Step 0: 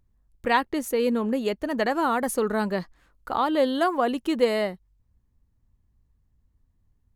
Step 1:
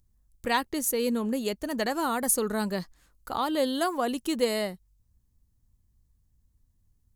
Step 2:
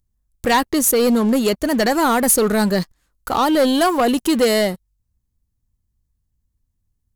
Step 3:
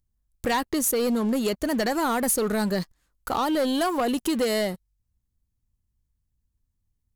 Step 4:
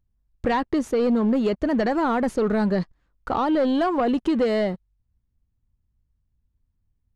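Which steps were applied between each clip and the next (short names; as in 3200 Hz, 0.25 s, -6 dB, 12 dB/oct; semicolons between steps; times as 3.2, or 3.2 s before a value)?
tone controls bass +4 dB, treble +14 dB; gain -5 dB
sample leveller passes 3; gain +2.5 dB
compressor 3:1, threshold -18 dBFS, peak gain reduction 5 dB; gain -4.5 dB
tape spacing loss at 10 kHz 29 dB; gain +4.5 dB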